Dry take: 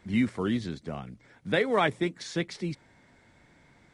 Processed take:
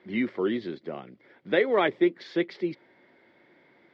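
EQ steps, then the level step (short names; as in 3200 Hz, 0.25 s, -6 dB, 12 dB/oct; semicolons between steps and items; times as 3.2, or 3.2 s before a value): air absorption 380 m; speaker cabinet 250–7100 Hz, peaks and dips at 360 Hz +10 dB, 550 Hz +5 dB, 2000 Hz +5 dB, 3300 Hz +5 dB, 4800 Hz +6 dB; high shelf 5600 Hz +10 dB; 0.0 dB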